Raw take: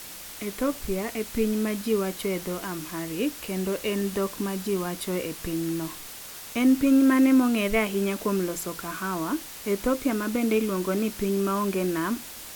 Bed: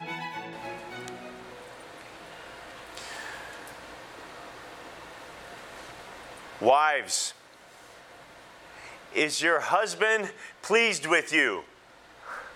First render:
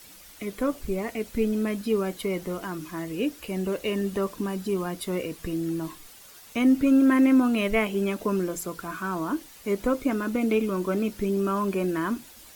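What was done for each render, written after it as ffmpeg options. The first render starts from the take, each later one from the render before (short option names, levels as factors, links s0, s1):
-af "afftdn=nr=10:nf=-41"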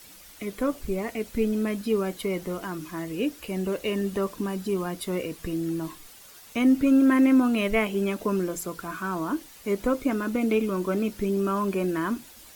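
-af anull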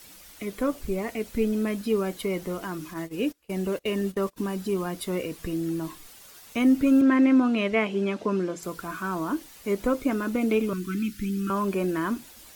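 -filter_complex "[0:a]asplit=3[s0][s1][s2];[s0]afade=t=out:st=2.93:d=0.02[s3];[s1]agate=range=0.0501:threshold=0.02:ratio=16:release=100:detection=peak,afade=t=in:st=2.93:d=0.02,afade=t=out:st=4.36:d=0.02[s4];[s2]afade=t=in:st=4.36:d=0.02[s5];[s3][s4][s5]amix=inputs=3:normalize=0,asettb=1/sr,asplit=3[s6][s7][s8];[s6]atrim=end=7.014[s9];[s7]atrim=start=7.01:end=8.63,asetpts=PTS-STARTPTS,afade=t=in:d=0.004:c=qsin,afade=t=out:st=1.616:d=0.004:c=qsin,highpass=120,lowpass=5200[s10];[s8]atrim=start=8.626[s11];[s9][s10]acrossfade=d=0.004:c1=hsin:c2=qsin[s12];[s12][s11]acrossfade=d=0.004:c1=qsin:c2=hsin,asettb=1/sr,asplit=3[s13][s14][s15];[s13]atrim=end=10.734[s16];[s14]atrim=start=10.73:end=11.5,asetpts=PTS-STARTPTS,afade=t=in:d=0.004:c=qsin,afade=t=out:st=0.766:d=0.004:c=qsin,asuperstop=centerf=660:order=8:qfactor=0.63[s17];[s15]atrim=start=11.496[s18];[s16][s17]acrossfade=d=0.004:c1=hsin:c2=qsin[s19];[s19][s18]acrossfade=d=0.004:c1=qsin:c2=hsin"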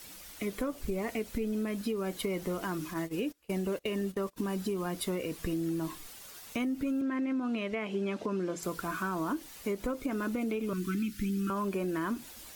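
-af "alimiter=limit=0.0944:level=0:latency=1:release=249,acompressor=threshold=0.0355:ratio=6"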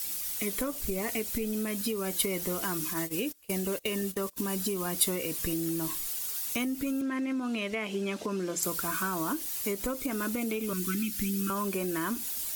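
-af "crystalizer=i=3.5:c=0"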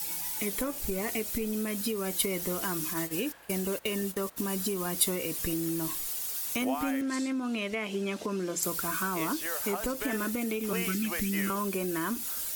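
-filter_complex "[1:a]volume=0.2[s0];[0:a][s0]amix=inputs=2:normalize=0"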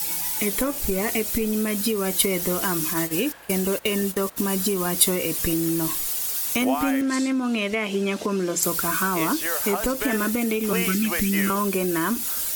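-af "volume=2.51"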